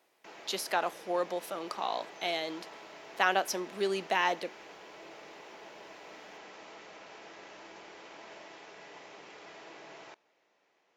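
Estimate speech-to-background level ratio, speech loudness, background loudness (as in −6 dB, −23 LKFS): 16.5 dB, −32.5 LKFS, −49.0 LKFS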